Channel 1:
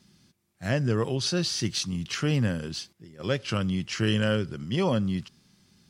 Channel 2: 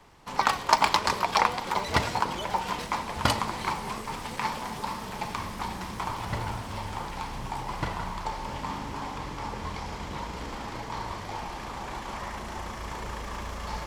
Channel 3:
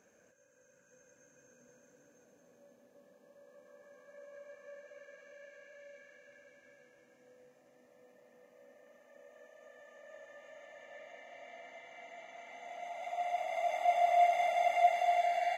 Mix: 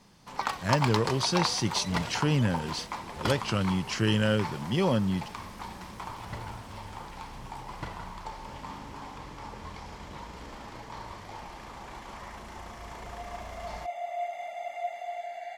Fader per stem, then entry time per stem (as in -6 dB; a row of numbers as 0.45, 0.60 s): -0.5, -7.0, -7.0 dB; 0.00, 0.00, 0.00 s